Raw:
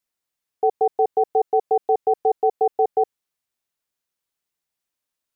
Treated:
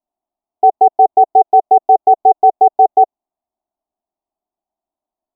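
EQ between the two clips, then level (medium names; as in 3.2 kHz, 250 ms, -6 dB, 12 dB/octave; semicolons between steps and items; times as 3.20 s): resonant low-pass 680 Hz, resonance Q 4.1; static phaser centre 500 Hz, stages 6; +5.0 dB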